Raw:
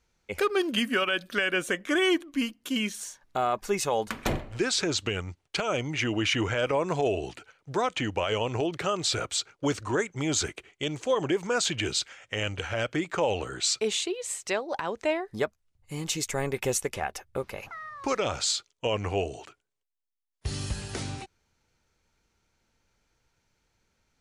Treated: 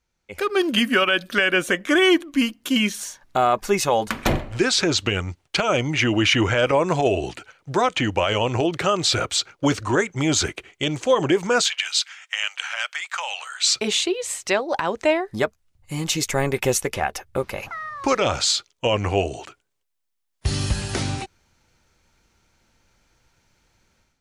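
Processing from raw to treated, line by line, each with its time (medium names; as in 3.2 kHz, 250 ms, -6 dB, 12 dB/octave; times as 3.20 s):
11.62–13.67 s: Bessel high-pass 1.4 kHz, order 6
whole clip: band-stop 440 Hz, Q 12; dynamic bell 8 kHz, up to -4 dB, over -46 dBFS, Q 1.9; level rider gain up to 14 dB; trim -4.5 dB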